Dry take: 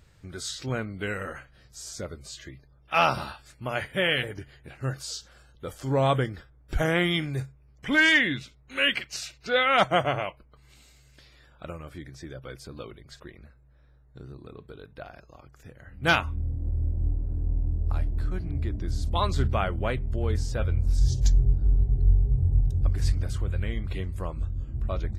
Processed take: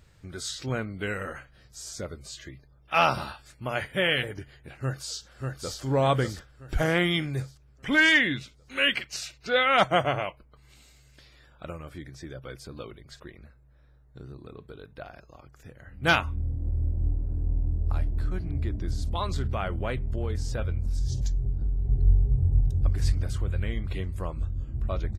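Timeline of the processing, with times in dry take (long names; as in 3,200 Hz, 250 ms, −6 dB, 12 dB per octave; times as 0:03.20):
0:04.79–0:05.80: delay throw 590 ms, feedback 45%, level −3 dB
0:18.93–0:21.85: downward compressor 4 to 1, threshold −24 dBFS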